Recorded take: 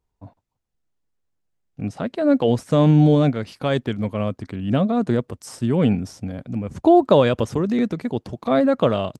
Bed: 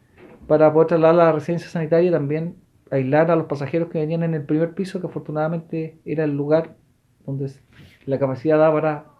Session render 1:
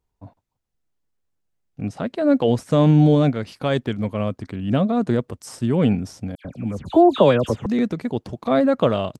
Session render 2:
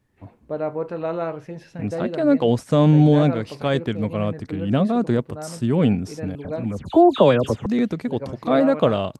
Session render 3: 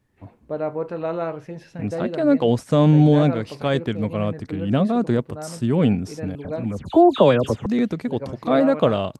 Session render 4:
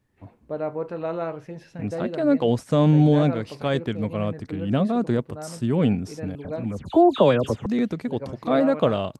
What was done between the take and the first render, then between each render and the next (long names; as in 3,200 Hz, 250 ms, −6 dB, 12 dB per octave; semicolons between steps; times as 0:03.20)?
0:06.35–0:07.66: all-pass dispersion lows, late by 98 ms, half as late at 2,300 Hz
mix in bed −12 dB
no processing that can be heard
level −2.5 dB